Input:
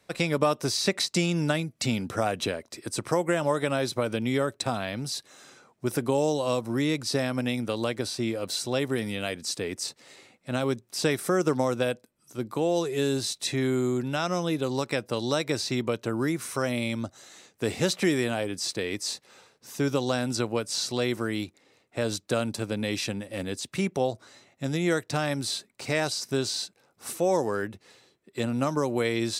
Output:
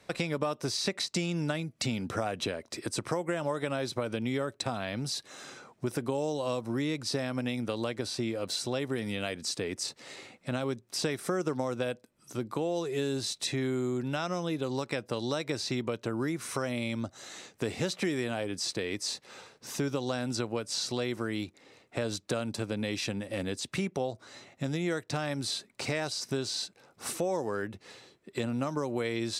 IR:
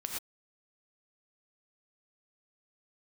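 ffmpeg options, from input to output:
-af "highshelf=frequency=12000:gain=-12,acompressor=threshold=-39dB:ratio=2.5,volume=5.5dB"

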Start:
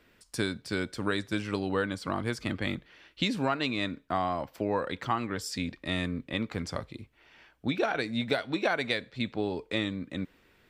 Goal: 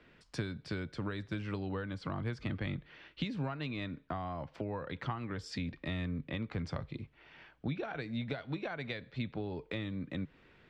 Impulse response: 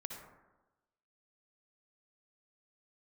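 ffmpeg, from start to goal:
-filter_complex "[0:a]lowpass=3700,equalizer=frequency=150:width=5.3:gain=8.5,acrossover=split=120[link_01][link_02];[link_02]acompressor=threshold=-38dB:ratio=6[link_03];[link_01][link_03]amix=inputs=2:normalize=0,volume=1dB"

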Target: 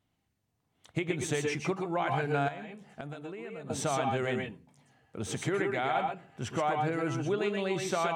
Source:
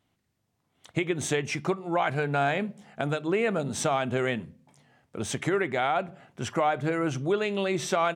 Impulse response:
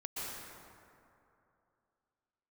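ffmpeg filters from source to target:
-filter_complex "[0:a]lowshelf=frequency=140:gain=6[link_01];[1:a]atrim=start_sample=2205,afade=type=out:start_time=0.18:duration=0.01,atrim=end_sample=8379[link_02];[link_01][link_02]afir=irnorm=-1:irlink=0,asettb=1/sr,asplit=3[link_03][link_04][link_05];[link_03]atrim=end=2.484[link_06];[link_04]atrim=start=2.48:end=3.7,asetpts=PTS-STARTPTS,afade=type=in:duration=0.004:curve=qsin,afade=type=out:start_time=1.216:duration=0.004:curve=qsin,acompressor=threshold=-38dB:ratio=16[link_07];[link_05]atrim=start=3.696[link_08];[link_06][link_07]acrossfade=duration=0.004:curve1=hsin:curve2=qsin[link_09];[link_09][link_08]acrossfade=duration=0.004:curve1=qsin:curve2=hsin"

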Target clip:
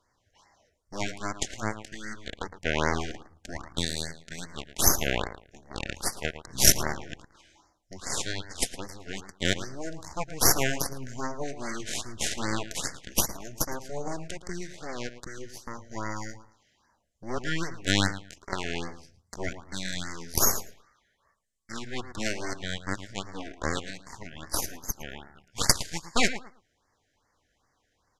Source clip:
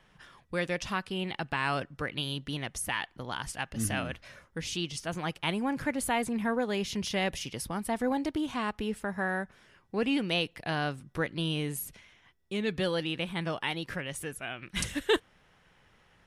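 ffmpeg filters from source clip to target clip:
ffmpeg -i in.wav -filter_complex "[0:a]crystalizer=i=3:c=0,aeval=exprs='0.708*(cos(1*acos(clip(val(0)/0.708,-1,1)))-cos(1*PI/2))+0.0794*(cos(7*acos(clip(val(0)/0.708,-1,1)))-cos(7*PI/2))+0.141*(cos(8*acos(clip(val(0)/0.708,-1,1)))-cos(8*PI/2))':channel_layout=same,asplit=2[link_01][link_02];[link_02]adelay=64,lowpass=frequency=4700:poles=1,volume=-12dB,asplit=2[link_03][link_04];[link_04]adelay=64,lowpass=frequency=4700:poles=1,volume=0.22,asplit=2[link_05][link_06];[link_06]adelay=64,lowpass=frequency=4700:poles=1,volume=0.22[link_07];[link_01][link_03][link_05][link_07]amix=inputs=4:normalize=0,asetrate=25442,aresample=44100,equalizer=frequency=7000:width=4.3:gain=5,afftfilt=real='re*(1-between(b*sr/1024,970*pow(3200/970,0.5+0.5*sin(2*PI*2.5*pts/sr))/1.41,970*pow(3200/970,0.5+0.5*sin(2*PI*2.5*pts/sr))*1.41))':imag='im*(1-between(b*sr/1024,970*pow(3200/970,0.5+0.5*sin(2*PI*2.5*pts/sr))/1.41,970*pow(3200/970,0.5+0.5*sin(2*PI*2.5*pts/sr))*1.41))':win_size=1024:overlap=0.75,volume=2dB" out.wav

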